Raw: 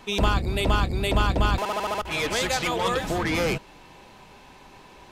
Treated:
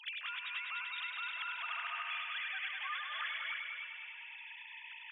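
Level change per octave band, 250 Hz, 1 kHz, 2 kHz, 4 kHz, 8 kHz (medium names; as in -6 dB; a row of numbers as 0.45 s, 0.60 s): under -40 dB, -16.5 dB, -8.0 dB, -11.5 dB, under -40 dB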